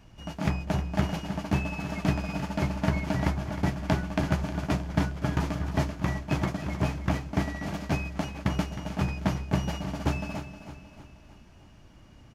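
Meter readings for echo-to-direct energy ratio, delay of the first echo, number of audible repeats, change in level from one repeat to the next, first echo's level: -10.5 dB, 0.312 s, 4, -6.0 dB, -11.5 dB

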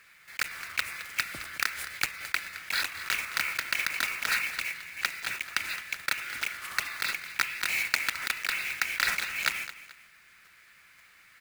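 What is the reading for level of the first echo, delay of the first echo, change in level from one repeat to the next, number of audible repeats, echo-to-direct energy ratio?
-14.5 dB, 0.216 s, -9.0 dB, 2, -14.0 dB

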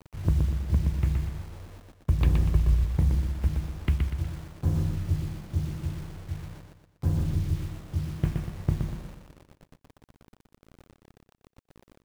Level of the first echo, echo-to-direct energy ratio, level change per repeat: -4.5 dB, -3.5 dB, -7.5 dB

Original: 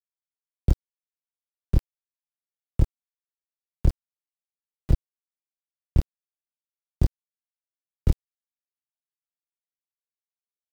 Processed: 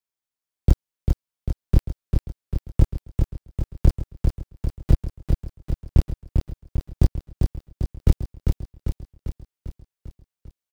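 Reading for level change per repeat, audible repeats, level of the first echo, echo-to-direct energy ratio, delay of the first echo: -4.5 dB, 7, -4.5 dB, -2.5 dB, 0.397 s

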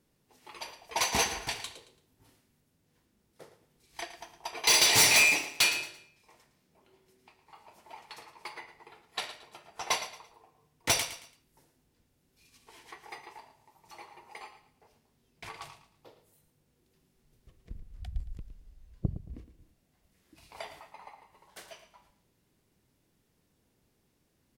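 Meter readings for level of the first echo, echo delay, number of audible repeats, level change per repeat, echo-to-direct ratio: -12.5 dB, 0.112 s, 3, -10.0 dB, -12.0 dB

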